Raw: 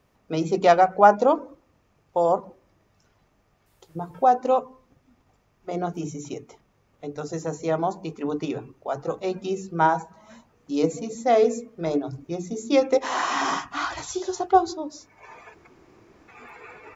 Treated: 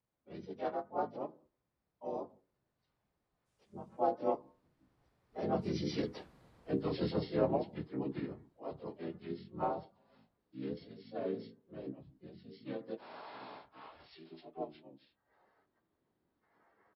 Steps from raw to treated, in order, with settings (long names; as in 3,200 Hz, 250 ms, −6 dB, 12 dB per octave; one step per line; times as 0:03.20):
partials spread apart or drawn together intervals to 87%
source passing by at 0:06.36, 18 m/s, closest 5.3 metres
pitch-shifted copies added −12 semitones −7 dB, −5 semitones −4 dB, +3 semitones −2 dB
level +2 dB